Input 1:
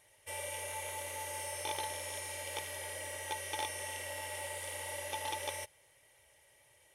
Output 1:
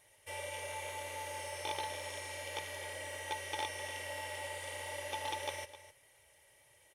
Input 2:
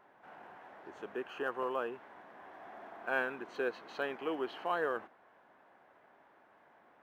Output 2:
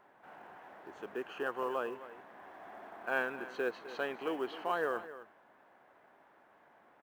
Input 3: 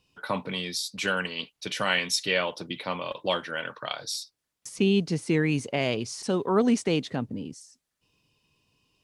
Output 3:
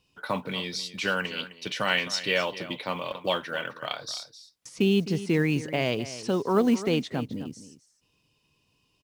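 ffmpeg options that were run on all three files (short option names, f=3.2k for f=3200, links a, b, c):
-filter_complex "[0:a]acrossover=split=6500[a][b];[b]acompressor=threshold=-53dB:ratio=4:attack=1:release=60[c];[a][c]amix=inputs=2:normalize=0,aecho=1:1:259:0.188,acrusher=bits=8:mode=log:mix=0:aa=0.000001"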